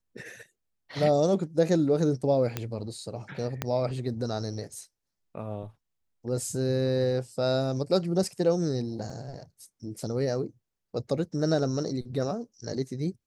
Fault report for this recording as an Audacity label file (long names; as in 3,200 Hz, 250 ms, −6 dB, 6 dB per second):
2.570000	2.570000	click −14 dBFS
3.620000	3.620000	click −13 dBFS
9.100000	9.100000	drop-out 3 ms